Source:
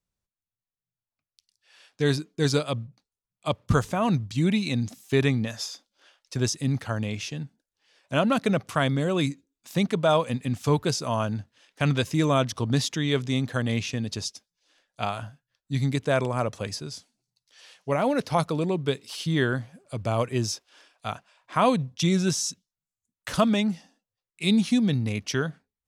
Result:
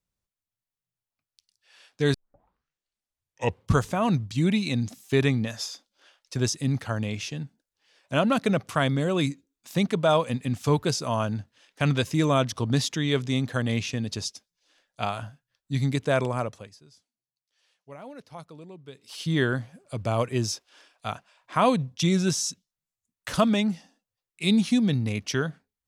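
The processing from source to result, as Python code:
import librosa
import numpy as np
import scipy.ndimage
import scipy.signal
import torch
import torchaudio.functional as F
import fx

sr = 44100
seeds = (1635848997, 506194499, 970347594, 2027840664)

y = fx.edit(x, sr, fx.tape_start(start_s=2.14, length_s=1.65),
    fx.fade_down_up(start_s=16.31, length_s=3.0, db=-18.5, fade_s=0.39), tone=tone)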